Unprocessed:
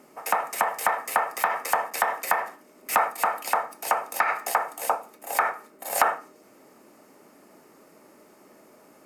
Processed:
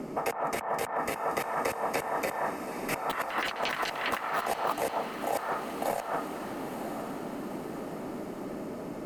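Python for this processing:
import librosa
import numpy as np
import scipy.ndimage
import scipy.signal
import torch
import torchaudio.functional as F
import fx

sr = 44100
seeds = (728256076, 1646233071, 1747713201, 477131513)

y = fx.tilt_eq(x, sr, slope=-4.5)
y = fx.echo_pitch(y, sr, ms=186, semitones=7, count=3, db_per_echo=-3.0, at=(2.91, 5.35))
y = fx.over_compress(y, sr, threshold_db=-33.0, ratio=-1.0)
y = fx.echo_diffused(y, sr, ms=947, feedback_pct=50, wet_db=-11)
y = fx.band_squash(y, sr, depth_pct=40)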